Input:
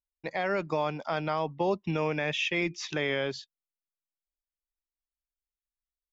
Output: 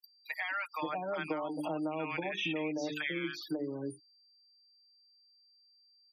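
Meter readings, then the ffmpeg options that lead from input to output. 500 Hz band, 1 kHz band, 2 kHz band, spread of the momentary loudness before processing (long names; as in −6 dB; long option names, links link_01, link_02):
−7.5 dB, −6.0 dB, −4.5 dB, 4 LU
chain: -filter_complex "[0:a]aeval=exprs='val(0)+0.00794*sin(2*PI*4700*n/s)':channel_layout=same,acrossover=split=1000|4500[link_01][link_02][link_03];[link_02]adelay=40[link_04];[link_01]adelay=580[link_05];[link_05][link_04][link_03]amix=inputs=3:normalize=0,acrusher=bits=6:mix=0:aa=0.5,acrossover=split=140|350[link_06][link_07][link_08];[link_06]acompressor=threshold=-50dB:ratio=4[link_09];[link_07]acompressor=threshold=-49dB:ratio=4[link_10];[link_08]acompressor=threshold=-36dB:ratio=4[link_11];[link_09][link_10][link_11]amix=inputs=3:normalize=0,highpass=49,equalizer=frequency=300:width_type=o:width=0.25:gain=13,bandreject=frequency=50:width_type=h:width=6,bandreject=frequency=100:width_type=h:width=6,bandreject=frequency=150:width_type=h:width=6,bandreject=frequency=200:width_type=h:width=6,bandreject=frequency=250:width_type=h:width=6,bandreject=frequency=300:width_type=h:width=6,bandreject=frequency=350:width_type=h:width=6,bandreject=frequency=400:width_type=h:width=6,bandreject=frequency=450:width_type=h:width=6,aecho=1:1:6.5:0.87,afftfilt=real='re*gte(hypot(re,im),0.00891)':imag='im*gte(hypot(re,im),0.00891)':win_size=1024:overlap=0.75,acompressor=threshold=-31dB:ratio=6,bass=frequency=250:gain=-4,treble=frequency=4000:gain=-13,crystalizer=i=3:c=0"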